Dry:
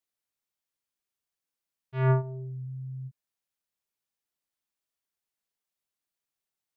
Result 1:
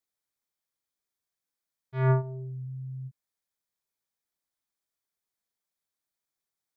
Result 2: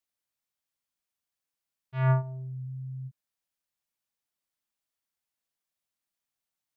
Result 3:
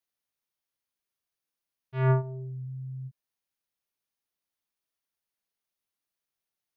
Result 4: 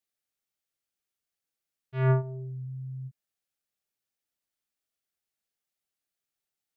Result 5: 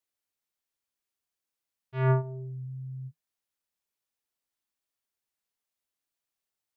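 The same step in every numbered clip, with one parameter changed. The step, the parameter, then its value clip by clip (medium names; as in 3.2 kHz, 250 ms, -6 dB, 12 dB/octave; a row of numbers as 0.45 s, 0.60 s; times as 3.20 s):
band-stop, frequency: 2.8 kHz, 400 Hz, 7.6 kHz, 1 kHz, 160 Hz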